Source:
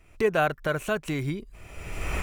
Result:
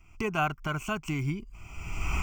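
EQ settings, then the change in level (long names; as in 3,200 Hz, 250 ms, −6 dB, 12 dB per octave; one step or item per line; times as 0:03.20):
phaser with its sweep stopped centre 2,600 Hz, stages 8
+1.0 dB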